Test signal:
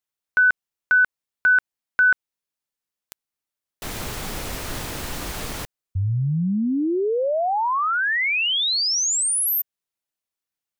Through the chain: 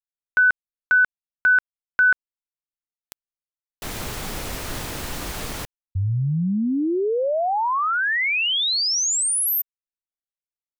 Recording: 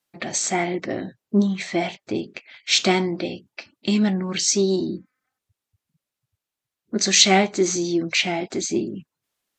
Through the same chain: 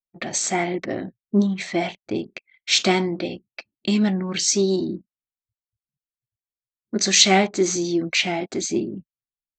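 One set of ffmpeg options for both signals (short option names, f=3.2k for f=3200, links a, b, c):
-af "anlmdn=1.58"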